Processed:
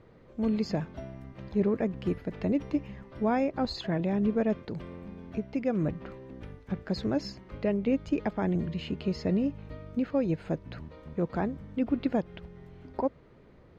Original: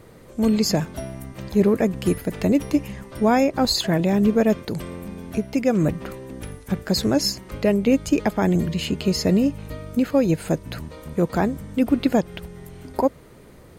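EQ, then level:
high-frequency loss of the air 220 metres
−8.5 dB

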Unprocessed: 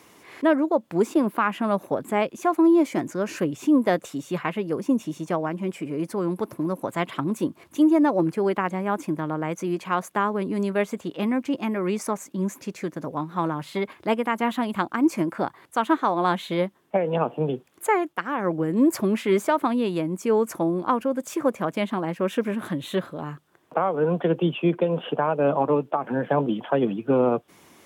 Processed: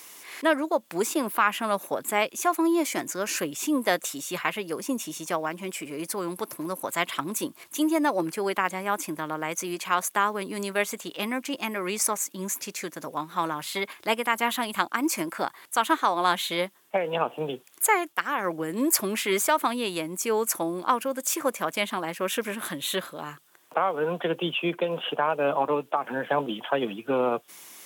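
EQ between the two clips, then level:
spectral tilt +4 dB per octave
0.0 dB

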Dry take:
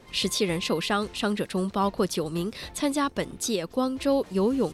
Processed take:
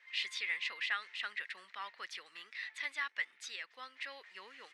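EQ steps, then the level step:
four-pole ladder band-pass 2,100 Hz, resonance 70%
+3.5 dB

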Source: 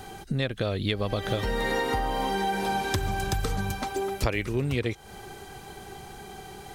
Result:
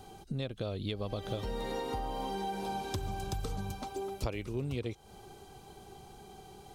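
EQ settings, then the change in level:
parametric band 1,800 Hz −11 dB 0.72 octaves
high-shelf EQ 7,400 Hz −4 dB
−8.0 dB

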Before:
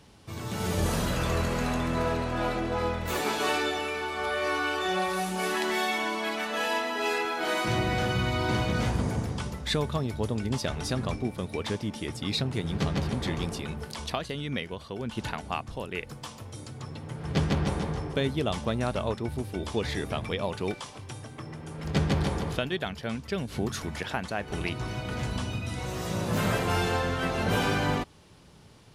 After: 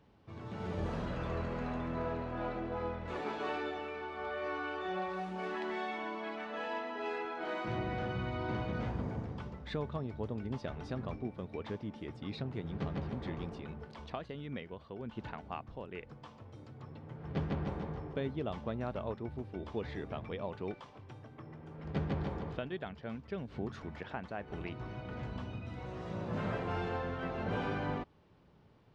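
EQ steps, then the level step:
head-to-tape spacing loss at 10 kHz 33 dB
low-shelf EQ 190 Hz −4.5 dB
−6.0 dB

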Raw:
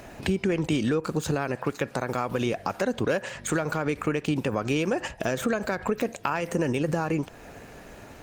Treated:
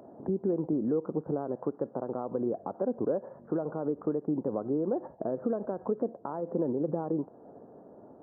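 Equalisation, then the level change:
Gaussian smoothing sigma 11 samples
high-pass filter 250 Hz 12 dB per octave
0.0 dB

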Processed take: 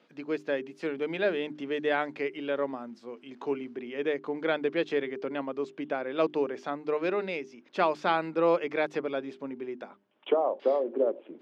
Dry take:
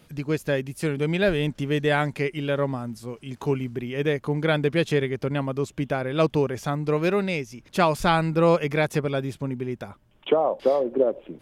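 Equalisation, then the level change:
high-pass filter 250 Hz 24 dB per octave
high-frequency loss of the air 180 metres
mains-hum notches 50/100/150/200/250/300/350/400 Hz
−4.0 dB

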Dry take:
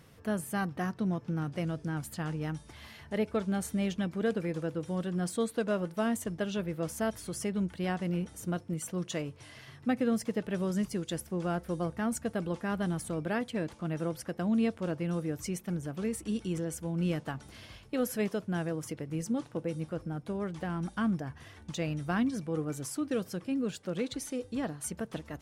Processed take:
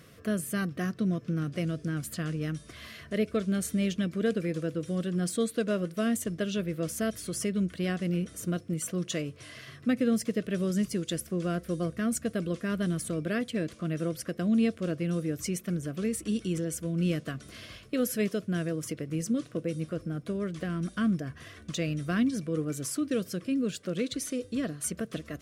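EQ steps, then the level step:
low-shelf EQ 96 Hz −8 dB
dynamic equaliser 950 Hz, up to −7 dB, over −47 dBFS, Q 0.82
Butterworth band-reject 860 Hz, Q 2.8
+5.0 dB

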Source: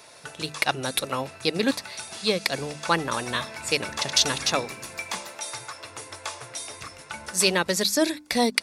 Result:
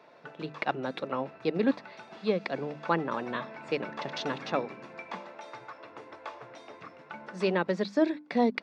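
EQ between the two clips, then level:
high-pass filter 160 Hz 24 dB per octave
head-to-tape spacing loss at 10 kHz 45 dB
0.0 dB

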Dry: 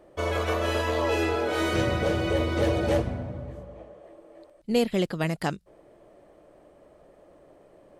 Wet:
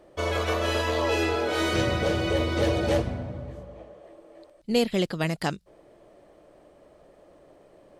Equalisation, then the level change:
parametric band 4,500 Hz +4.5 dB 1.5 octaves
0.0 dB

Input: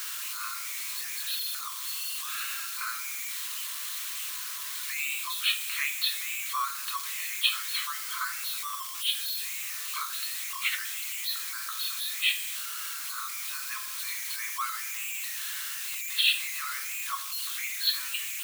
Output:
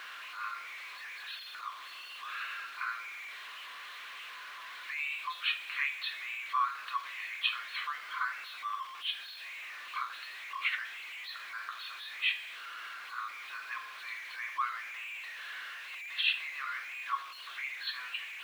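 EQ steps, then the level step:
three-way crossover with the lows and the highs turned down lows −16 dB, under 190 Hz, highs −21 dB, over 3,300 Hz
high-shelf EQ 4,300 Hz −10.5 dB
notch filter 1,300 Hz, Q 18
+2.0 dB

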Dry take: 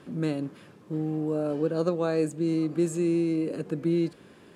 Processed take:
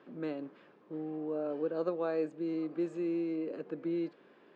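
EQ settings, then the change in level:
high-pass filter 340 Hz 12 dB per octave
low-pass filter 3,000 Hz 6 dB per octave
high-frequency loss of the air 160 metres
−4.5 dB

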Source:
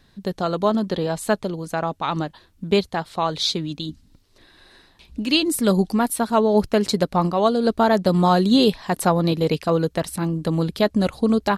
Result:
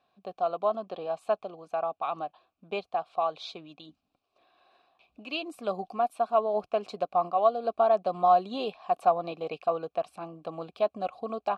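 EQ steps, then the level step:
formant filter a
+2.0 dB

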